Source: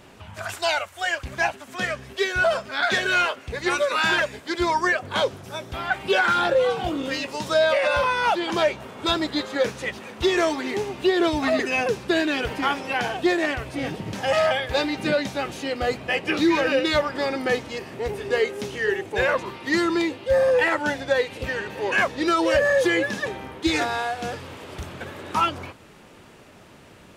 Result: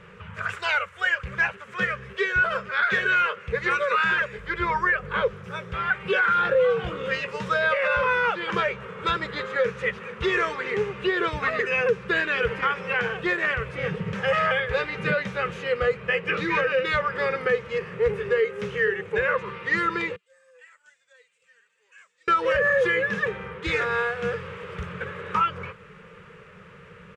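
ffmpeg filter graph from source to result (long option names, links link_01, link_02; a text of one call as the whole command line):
ffmpeg -i in.wav -filter_complex "[0:a]asettb=1/sr,asplit=3[link_01][link_02][link_03];[link_01]atrim=end=4.384[link_04];[link_02]atrim=start=4.38:end=5.33,asetpts=PTS-STARTPTS,afade=type=in:duration=0.004:curve=qsin,afade=type=out:start_time=0.946:duration=0.004:curve=qsin,acrossover=split=3300[link_05][link_06];[link_06]acompressor=threshold=-45dB:ratio=4:attack=1:release=60[link_07];[link_05][link_07]amix=inputs=2:normalize=0,acrusher=bits=8:mix=0:aa=0.5,aeval=exprs='val(0)+0.00794*(sin(2*PI*50*n/s)+sin(2*PI*2*50*n/s)/2+sin(2*PI*3*50*n/s)/3+sin(2*PI*4*50*n/s)/4+sin(2*PI*5*50*n/s)/5)':channel_layout=same[link_08];[link_03]atrim=start=5.326[link_09];[link_04][link_08]acrossfade=duration=0.004:curve1=hsin:curve2=qsin[link_10];[link_10][link_09]acrossfade=duration=0.004:curve1=qsin:curve2=hsin,asettb=1/sr,asplit=3[link_11][link_12][link_13];[link_11]atrim=end=20.164[link_14];[link_12]atrim=start=20.16:end=22.28,asetpts=PTS-STARTPTS,afade=type=in:duration=0.004:curve=qsin,afade=type=out:start_time=2.116:duration=0.004:curve=qsin,flanger=delay=2.8:depth=3.2:regen=54:speed=1.2:shape=sinusoidal,bandpass=frequency=7700:width_type=q:width=6.3[link_15];[link_13]atrim=start=22.276[link_16];[link_14][link_15]acrossfade=duration=0.004:curve1=hsin:curve2=qsin[link_17];[link_17][link_16]acrossfade=duration=0.004:curve1=qsin:curve2=hsin,firequalizer=gain_entry='entry(120,0);entry(180,8);entry(270,-22);entry(460,9);entry(680,-13);entry(1200,6);entry(2400,2);entry(4200,-11);entry(7600,-12);entry(13000,-23)':delay=0.05:min_phase=1,alimiter=limit=-13.5dB:level=0:latency=1:release=222" out.wav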